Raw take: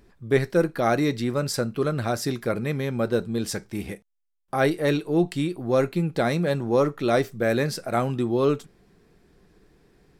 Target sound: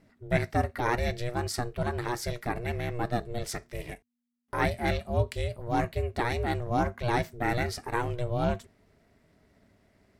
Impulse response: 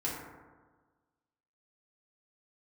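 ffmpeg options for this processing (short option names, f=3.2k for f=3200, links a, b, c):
-af "aeval=exprs='val(0)*sin(2*PI*240*n/s)':c=same,equalizer=f=100:t=o:w=0.33:g=4,equalizer=f=250:t=o:w=0.33:g=-4,equalizer=f=500:t=o:w=0.33:g=-5,equalizer=f=2k:t=o:w=0.33:g=6,volume=-2.5dB"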